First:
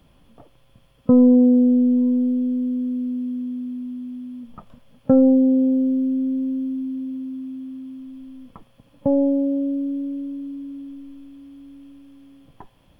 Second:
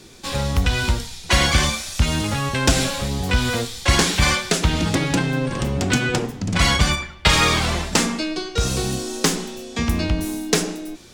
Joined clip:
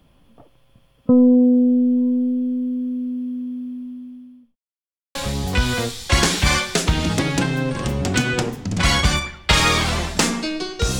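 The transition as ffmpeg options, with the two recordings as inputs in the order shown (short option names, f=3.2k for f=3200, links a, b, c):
-filter_complex "[0:a]apad=whole_dur=10.99,atrim=end=10.99,asplit=2[a][b];[a]atrim=end=4.56,asetpts=PTS-STARTPTS,afade=t=out:st=3.49:d=1.07:c=qsin[c];[b]atrim=start=4.56:end=5.15,asetpts=PTS-STARTPTS,volume=0[d];[1:a]atrim=start=2.91:end=8.75,asetpts=PTS-STARTPTS,afade=t=in:d=0.004:c=hsin[e];[c][d][e]concat=n=3:v=0:a=1"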